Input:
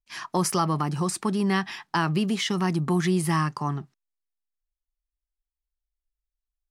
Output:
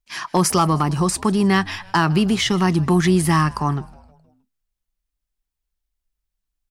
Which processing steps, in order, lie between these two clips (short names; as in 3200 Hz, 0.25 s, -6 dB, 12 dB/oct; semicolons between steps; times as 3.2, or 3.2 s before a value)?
frequency-shifting echo 0.157 s, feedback 52%, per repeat -100 Hz, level -22.5 dB; hard clip -15 dBFS, distortion -30 dB; gain +7 dB